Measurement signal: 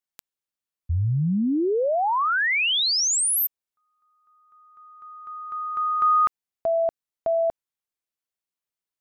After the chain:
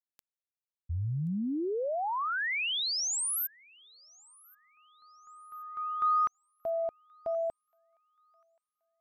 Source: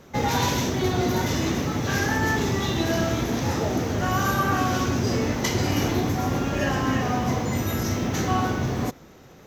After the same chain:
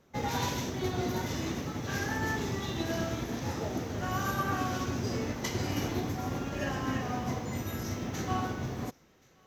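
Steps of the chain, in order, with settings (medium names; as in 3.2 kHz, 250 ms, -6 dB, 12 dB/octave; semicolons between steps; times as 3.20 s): on a send: feedback echo behind a high-pass 1078 ms, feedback 33%, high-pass 1.4 kHz, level -20 dB; on the sum: upward expansion 1.5:1, over -35 dBFS; trim -7.5 dB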